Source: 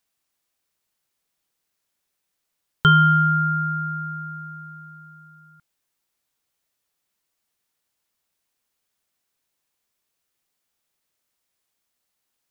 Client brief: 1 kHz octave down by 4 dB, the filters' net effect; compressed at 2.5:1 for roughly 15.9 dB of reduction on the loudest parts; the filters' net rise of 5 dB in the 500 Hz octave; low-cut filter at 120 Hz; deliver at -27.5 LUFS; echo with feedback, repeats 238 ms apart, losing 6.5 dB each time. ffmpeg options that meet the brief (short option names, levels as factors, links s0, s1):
-af "highpass=120,equalizer=f=500:t=o:g=8,equalizer=f=1000:t=o:g=-9,acompressor=threshold=0.0126:ratio=2.5,aecho=1:1:238|476|714|952|1190|1428:0.473|0.222|0.105|0.0491|0.0231|0.0109,volume=2.37"